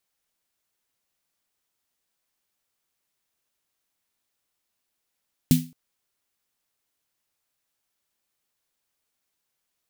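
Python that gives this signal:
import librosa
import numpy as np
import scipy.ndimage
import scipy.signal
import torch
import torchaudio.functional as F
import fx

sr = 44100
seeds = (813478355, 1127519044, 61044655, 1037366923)

y = fx.drum_snare(sr, seeds[0], length_s=0.22, hz=160.0, second_hz=250.0, noise_db=-10.5, noise_from_hz=2300.0, decay_s=0.31, noise_decay_s=0.29)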